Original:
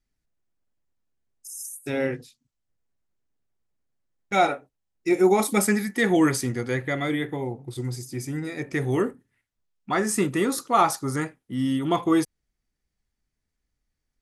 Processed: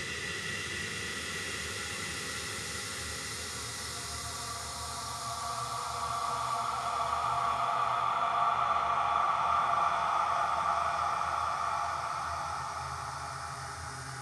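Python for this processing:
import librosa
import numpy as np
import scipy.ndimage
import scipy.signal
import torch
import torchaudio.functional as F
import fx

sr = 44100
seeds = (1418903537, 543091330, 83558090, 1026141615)

y = fx.echo_pitch(x, sr, ms=100, semitones=-4, count=2, db_per_echo=-6.0)
y = fx.tone_stack(y, sr, knobs='10-0-10')
y = fx.env_lowpass_down(y, sr, base_hz=1000.0, full_db=-21.0)
y = fx.paulstretch(y, sr, seeds[0], factor=22.0, window_s=0.5, from_s=10.38)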